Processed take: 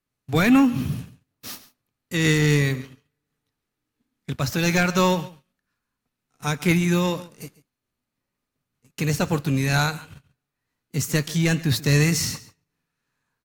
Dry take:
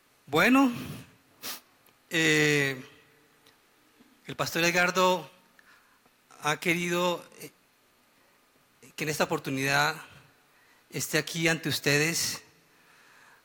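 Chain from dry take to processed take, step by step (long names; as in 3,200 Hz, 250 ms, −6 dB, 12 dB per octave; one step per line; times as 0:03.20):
noise gate −50 dBFS, range −18 dB
bass and treble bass +15 dB, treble +3 dB
leveller curve on the samples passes 1
on a send: single-tap delay 138 ms −18.5 dB
on the sum: amplitude modulation by smooth noise, depth 55%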